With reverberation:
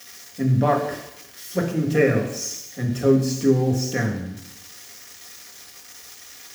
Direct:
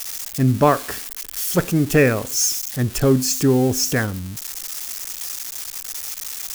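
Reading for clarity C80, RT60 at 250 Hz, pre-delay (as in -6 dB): 9.5 dB, 0.80 s, 3 ms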